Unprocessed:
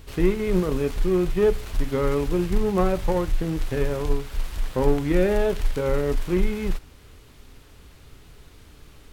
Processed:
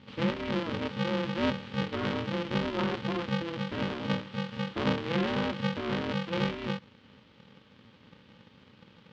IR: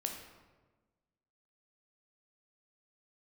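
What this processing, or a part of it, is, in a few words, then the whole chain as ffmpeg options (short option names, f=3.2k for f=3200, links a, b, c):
ring modulator pedal into a guitar cabinet: -af "aeval=exprs='val(0)*sgn(sin(2*PI*170*n/s))':c=same,highpass=84,equalizer=f=150:t=q:w=4:g=-7,equalizer=f=690:t=q:w=4:g=-10,equalizer=f=3.1k:t=q:w=4:g=5,lowpass=f=4.4k:w=0.5412,lowpass=f=4.4k:w=1.3066,volume=-7.5dB"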